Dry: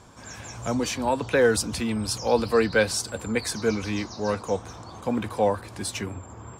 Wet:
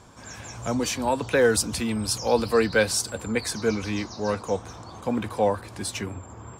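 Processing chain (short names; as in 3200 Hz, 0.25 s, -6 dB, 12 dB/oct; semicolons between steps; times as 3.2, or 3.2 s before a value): 0.8–3.13 high shelf 7200 Hz +5.5 dB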